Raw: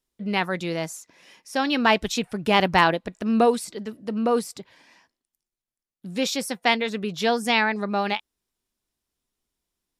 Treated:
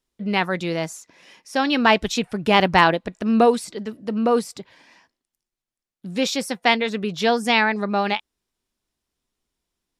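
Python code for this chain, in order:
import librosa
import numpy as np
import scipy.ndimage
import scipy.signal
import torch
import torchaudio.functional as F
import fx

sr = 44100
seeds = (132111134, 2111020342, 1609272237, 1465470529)

y = fx.high_shelf(x, sr, hz=11000.0, db=-9.5)
y = y * librosa.db_to_amplitude(3.0)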